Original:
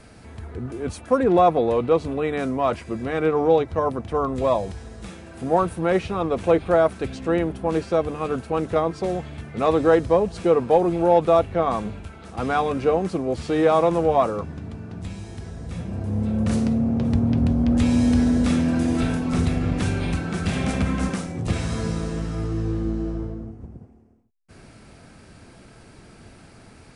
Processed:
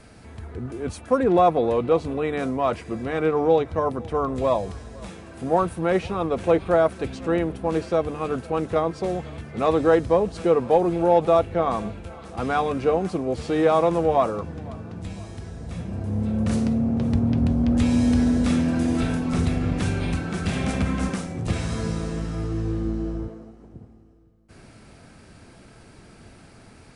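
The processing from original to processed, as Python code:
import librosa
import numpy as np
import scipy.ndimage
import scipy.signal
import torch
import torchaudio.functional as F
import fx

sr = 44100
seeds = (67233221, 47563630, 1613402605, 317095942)

y = fx.highpass(x, sr, hz=290.0, slope=12, at=(23.28, 23.74))
y = fx.echo_feedback(y, sr, ms=508, feedback_pct=49, wet_db=-23.0)
y = y * librosa.db_to_amplitude(-1.0)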